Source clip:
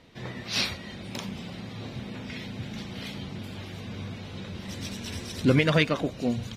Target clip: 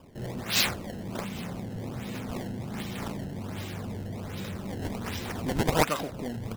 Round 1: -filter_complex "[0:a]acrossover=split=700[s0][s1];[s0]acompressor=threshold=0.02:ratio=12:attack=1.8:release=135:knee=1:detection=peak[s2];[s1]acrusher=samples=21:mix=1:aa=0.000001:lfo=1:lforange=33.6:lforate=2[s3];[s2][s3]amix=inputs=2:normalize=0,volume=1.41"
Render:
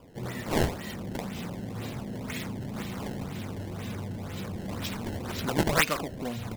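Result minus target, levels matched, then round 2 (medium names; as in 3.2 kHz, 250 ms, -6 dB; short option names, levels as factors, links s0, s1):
decimation with a swept rate: distortion +4 dB
-filter_complex "[0:a]acrossover=split=700[s0][s1];[s0]acompressor=threshold=0.02:ratio=12:attack=1.8:release=135:knee=1:detection=peak[s2];[s1]acrusher=samples=21:mix=1:aa=0.000001:lfo=1:lforange=33.6:lforate=1.3[s3];[s2][s3]amix=inputs=2:normalize=0,volume=1.41"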